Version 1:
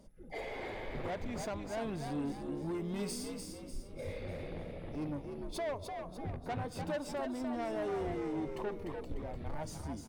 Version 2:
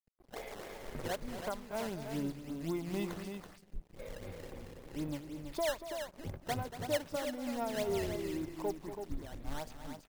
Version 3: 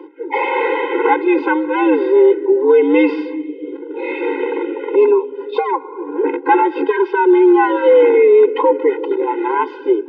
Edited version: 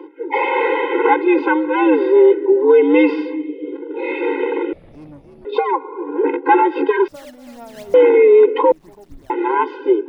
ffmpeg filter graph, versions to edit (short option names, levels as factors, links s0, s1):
-filter_complex "[1:a]asplit=2[s0][s1];[2:a]asplit=4[s2][s3][s4][s5];[s2]atrim=end=4.732[s6];[0:a]atrim=start=4.728:end=5.452[s7];[s3]atrim=start=5.448:end=7.082[s8];[s0]atrim=start=7.078:end=7.942[s9];[s4]atrim=start=7.938:end=8.722[s10];[s1]atrim=start=8.718:end=9.302[s11];[s5]atrim=start=9.298[s12];[s6][s7]acrossfade=d=0.004:c1=hsin:c2=hsin[s13];[s13][s8]acrossfade=d=0.004:c1=hsin:c2=hsin[s14];[s14][s9]acrossfade=d=0.004:c1=hsin:c2=hsin[s15];[s15][s10]acrossfade=d=0.004:c1=hsin:c2=hsin[s16];[s16][s11]acrossfade=d=0.004:c1=hsin:c2=hsin[s17];[s17][s12]acrossfade=d=0.004:c1=hsin:c2=hsin"